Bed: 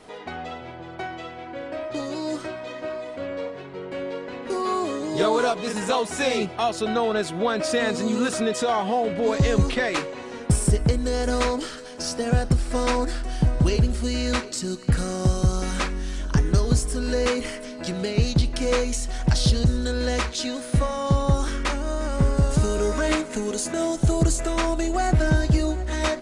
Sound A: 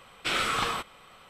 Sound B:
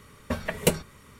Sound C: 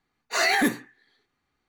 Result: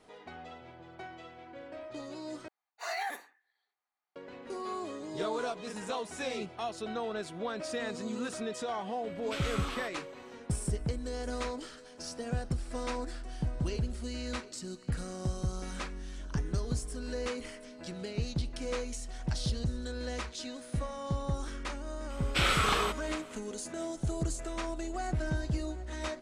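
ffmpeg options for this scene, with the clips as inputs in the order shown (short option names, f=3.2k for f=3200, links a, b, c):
-filter_complex "[1:a]asplit=2[a][b];[0:a]volume=-13dB[c];[3:a]highpass=f=740:t=q:w=2.5[d];[a]alimiter=limit=-19dB:level=0:latency=1:release=71[e];[c]asplit=2[f][g];[f]atrim=end=2.484[h];[d]atrim=end=1.68,asetpts=PTS-STARTPTS,volume=-17dB[i];[g]atrim=start=4.156[j];[e]atrim=end=1.29,asetpts=PTS-STARTPTS,volume=-10.5dB,afade=t=in:d=0.004:c=hsin,afade=t=out:st=1.286:d=0.004:c=hsin,adelay=399546S[k];[b]atrim=end=1.29,asetpts=PTS-STARTPTS,volume=-0.5dB,afade=t=in:d=0.004:c=hsin,afade=t=out:st=1.286:d=0.004:c=hsin,adelay=22100[l];[h][i]acrossfade=d=0.004:c1=hsin:c2=hsin[m];[m][j]acrossfade=d=0.004:c1=hsin:c2=hsin[n];[n][k][l]amix=inputs=3:normalize=0"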